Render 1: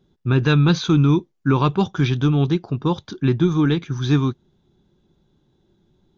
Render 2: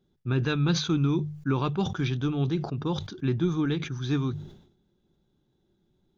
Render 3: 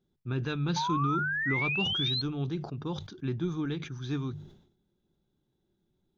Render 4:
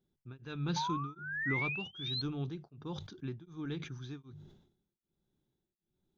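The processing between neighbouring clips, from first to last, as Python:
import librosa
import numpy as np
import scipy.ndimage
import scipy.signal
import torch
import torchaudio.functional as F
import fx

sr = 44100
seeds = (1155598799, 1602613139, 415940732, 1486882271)

y1 = fx.peak_eq(x, sr, hz=1000.0, db=-3.5, octaves=0.26)
y1 = fx.hum_notches(y1, sr, base_hz=50, count=3)
y1 = fx.sustainer(y1, sr, db_per_s=88.0)
y1 = y1 * 10.0 ** (-8.5 / 20.0)
y2 = fx.spec_paint(y1, sr, seeds[0], shape='rise', start_s=0.76, length_s=1.46, low_hz=870.0, high_hz=4300.0, level_db=-25.0)
y2 = y2 * 10.0 ** (-6.0 / 20.0)
y3 = y2 * np.abs(np.cos(np.pi * 1.3 * np.arange(len(y2)) / sr))
y3 = y3 * 10.0 ** (-4.0 / 20.0)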